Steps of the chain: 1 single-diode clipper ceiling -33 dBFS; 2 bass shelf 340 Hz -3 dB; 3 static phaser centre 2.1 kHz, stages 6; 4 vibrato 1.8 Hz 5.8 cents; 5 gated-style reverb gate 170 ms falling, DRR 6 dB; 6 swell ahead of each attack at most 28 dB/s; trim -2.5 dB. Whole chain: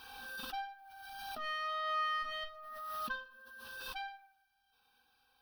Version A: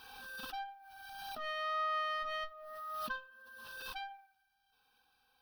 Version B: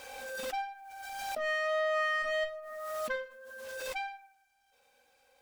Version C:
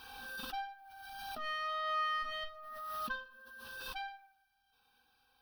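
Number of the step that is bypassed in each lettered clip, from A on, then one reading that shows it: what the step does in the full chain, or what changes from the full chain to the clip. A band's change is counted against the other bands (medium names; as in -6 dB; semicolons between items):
5, 500 Hz band +4.5 dB; 3, 500 Hz band +14.5 dB; 2, 250 Hz band +1.5 dB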